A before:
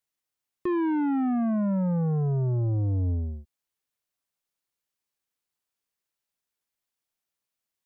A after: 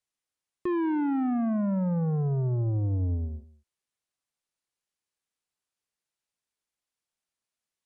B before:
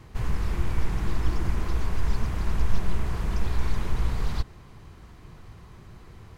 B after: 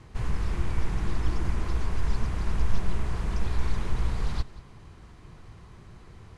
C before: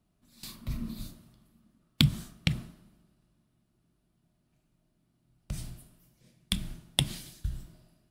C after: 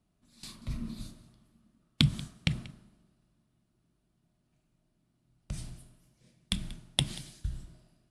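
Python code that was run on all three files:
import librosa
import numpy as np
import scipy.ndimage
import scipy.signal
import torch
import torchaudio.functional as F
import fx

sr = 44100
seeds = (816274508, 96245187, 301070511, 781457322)

y = scipy.signal.sosfilt(scipy.signal.butter(6, 11000.0, 'lowpass', fs=sr, output='sos'), x)
y = y + 10.0 ** (-19.5 / 20.0) * np.pad(y, (int(186 * sr / 1000.0), 0))[:len(y)]
y = y * librosa.db_to_amplitude(-1.5)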